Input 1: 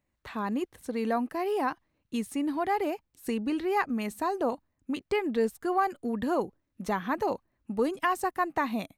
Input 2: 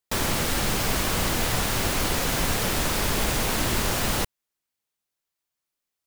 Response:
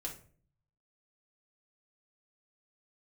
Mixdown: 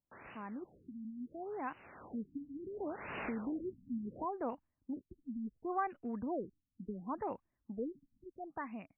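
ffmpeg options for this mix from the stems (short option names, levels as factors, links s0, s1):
-filter_complex "[0:a]equalizer=f=490:w=1.5:g=-3.5,volume=0.211,asplit=2[s0][s1];[1:a]highpass=97,lowshelf=f=430:g=-10,volume=0.168,afade=t=in:st=2.56:d=0.35:silence=0.398107[s2];[s1]apad=whole_len=267550[s3];[s2][s3]sidechaincompress=threshold=0.00316:ratio=8:attack=29:release=419[s4];[s0][s4]amix=inputs=2:normalize=0,dynaudnorm=f=390:g=9:m=1.88,afftfilt=real='re*lt(b*sr/1024,280*pow(3000/280,0.5+0.5*sin(2*PI*0.71*pts/sr)))':imag='im*lt(b*sr/1024,280*pow(3000/280,0.5+0.5*sin(2*PI*0.71*pts/sr)))':win_size=1024:overlap=0.75"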